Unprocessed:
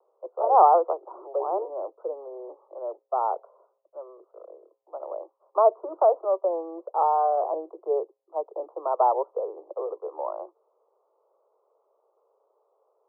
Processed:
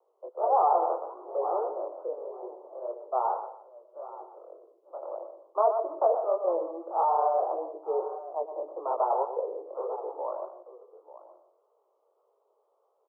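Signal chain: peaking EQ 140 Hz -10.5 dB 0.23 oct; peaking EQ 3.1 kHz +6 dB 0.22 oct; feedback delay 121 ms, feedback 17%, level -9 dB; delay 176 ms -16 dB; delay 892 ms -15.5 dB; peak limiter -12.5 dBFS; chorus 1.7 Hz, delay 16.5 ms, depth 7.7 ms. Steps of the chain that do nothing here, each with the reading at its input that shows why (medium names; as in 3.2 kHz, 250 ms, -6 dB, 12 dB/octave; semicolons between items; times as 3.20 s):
peaking EQ 140 Hz: input has nothing below 300 Hz; peaking EQ 3.1 kHz: input has nothing above 1.4 kHz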